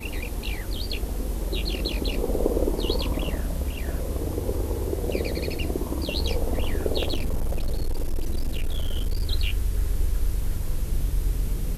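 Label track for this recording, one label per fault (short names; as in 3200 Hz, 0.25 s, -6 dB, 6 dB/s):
7.000000	9.260000	clipped -20.5 dBFS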